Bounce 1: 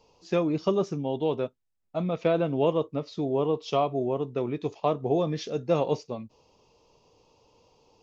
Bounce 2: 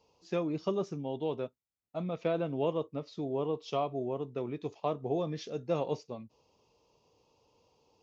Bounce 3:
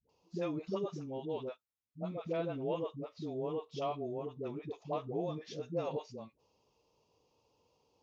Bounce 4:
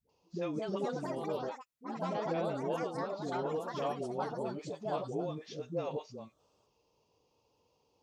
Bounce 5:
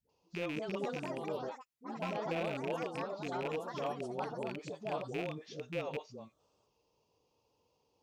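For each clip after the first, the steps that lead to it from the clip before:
HPF 44 Hz; gain -7 dB
dispersion highs, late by 93 ms, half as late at 420 Hz; gain -4.5 dB
echoes that change speed 0.289 s, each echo +4 st, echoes 3
rattling part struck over -40 dBFS, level -29 dBFS; gain -2.5 dB

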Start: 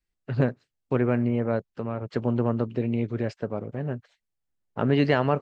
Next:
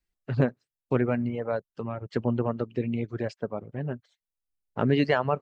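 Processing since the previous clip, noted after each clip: reverb removal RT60 1.5 s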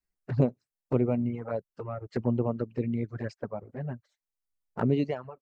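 ending faded out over 0.60 s; envelope flanger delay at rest 10.6 ms, full sweep at -23 dBFS; bell 3200 Hz -10 dB 0.59 oct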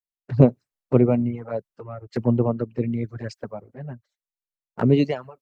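three-band expander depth 70%; gain +6 dB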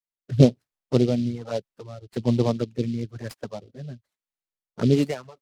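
rotary speaker horn 1.1 Hz; noise-modulated delay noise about 3600 Hz, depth 0.036 ms

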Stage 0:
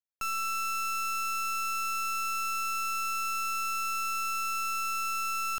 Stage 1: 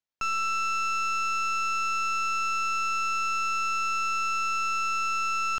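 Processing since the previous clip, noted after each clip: EQ curve 3100 Hz 0 dB, 6500 Hz -3 dB, 9900 Hz -22 dB; gain +4.5 dB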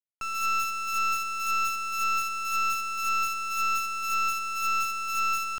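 tremolo 1.9 Hz, depth 34%; companded quantiser 4-bit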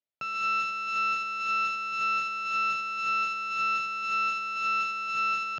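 speaker cabinet 130–4500 Hz, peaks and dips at 140 Hz +10 dB, 600 Hz +8 dB, 1100 Hz -9 dB; gain +1.5 dB

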